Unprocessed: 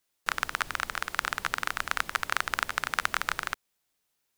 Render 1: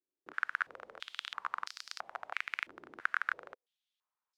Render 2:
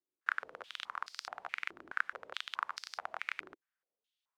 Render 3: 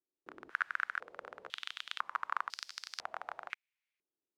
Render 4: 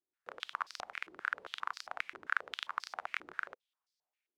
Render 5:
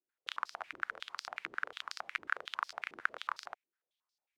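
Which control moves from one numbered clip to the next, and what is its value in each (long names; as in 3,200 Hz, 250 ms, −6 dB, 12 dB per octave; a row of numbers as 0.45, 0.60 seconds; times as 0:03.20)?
band-pass on a step sequencer, speed: 3, 4.7, 2, 7.5, 11 Hertz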